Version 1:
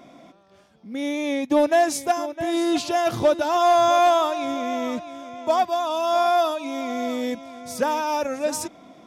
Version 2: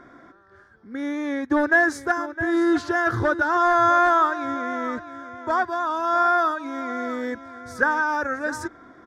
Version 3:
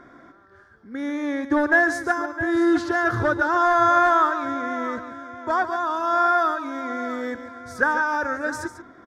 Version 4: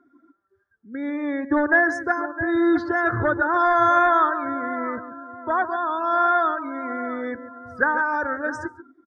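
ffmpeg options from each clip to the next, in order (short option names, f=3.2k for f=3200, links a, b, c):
-af "firequalizer=gain_entry='entry(110,0);entry(160,-16);entry(370,-3);entry(620,-15);entry(1600,8);entry(2500,-22);entry(4100,-15);entry(13000,-23)':delay=0.05:min_phase=1,volume=7.5dB"
-af "aecho=1:1:142:0.266"
-af "afftdn=nr=26:nf=-36"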